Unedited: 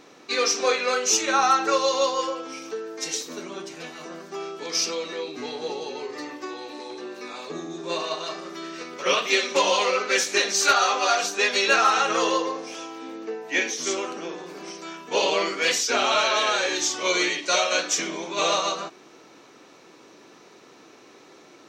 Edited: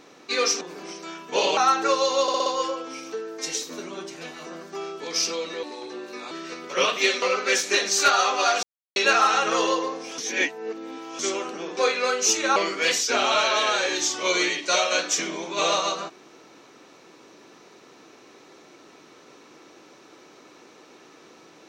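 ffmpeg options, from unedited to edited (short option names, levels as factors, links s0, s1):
-filter_complex "[0:a]asplit=16[s0][s1][s2][s3][s4][s5][s6][s7][s8][s9][s10][s11][s12][s13][s14][s15];[s0]atrim=end=0.612[s16];[s1]atrim=start=14.398:end=15.362[s17];[s2]atrim=start=1.398:end=2.112[s18];[s3]atrim=start=2.048:end=2.112[s19];[s4]atrim=start=2.048:end=2.112[s20];[s5]atrim=start=2.048:end=2.112[s21];[s6]atrim=start=2.048:end=5.222[s22];[s7]atrim=start=6.708:end=7.392[s23];[s8]atrim=start=8.598:end=9.512[s24];[s9]atrim=start=9.848:end=11.26,asetpts=PTS-STARTPTS,afade=t=out:st=1.408:d=0.004:c=hsin[s25];[s10]atrim=start=11.26:end=11.59,asetpts=PTS-STARTPTS,volume=0[s26];[s11]atrim=start=11.59:end=12.812,asetpts=PTS-STARTPTS,afade=t=in:d=0.004:c=hsin[s27];[s12]atrim=start=12.808:end=13.822,asetpts=PTS-STARTPTS,areverse[s28];[s13]atrim=start=13.818:end=14.402[s29];[s14]atrim=start=0.608:end=1.402[s30];[s15]atrim=start=15.358[s31];[s16][s17]acrossfade=d=0.004:c1=hsin:c2=hsin[s32];[s32][s18]acrossfade=d=0.004:c1=hsin:c2=hsin[s33];[s33][s19]acrossfade=d=0.004:c1=hsin:c2=hsin[s34];[s34][s20]acrossfade=d=0.004:c1=hsin:c2=hsin[s35];[s35][s21]acrossfade=d=0.004:c1=hsin:c2=hsin[s36];[s36][s22]acrossfade=d=0.004:c1=hsin:c2=hsin[s37];[s37][s23]acrossfade=d=0.004:c1=hsin:c2=hsin[s38];[s38][s24]acrossfade=d=0.004:c1=hsin:c2=hsin[s39];[s25][s26][s27]concat=n=3:v=0:a=1[s40];[s39][s40]acrossfade=d=0.004:c1=hsin:c2=hsin[s41];[s41][s28]acrossfade=d=0.004:c1=hsin:c2=hsin[s42];[s42][s29]acrossfade=d=0.004:c1=hsin:c2=hsin[s43];[s43][s30]acrossfade=d=0.004:c1=hsin:c2=hsin[s44];[s44][s31]acrossfade=d=0.004:c1=hsin:c2=hsin"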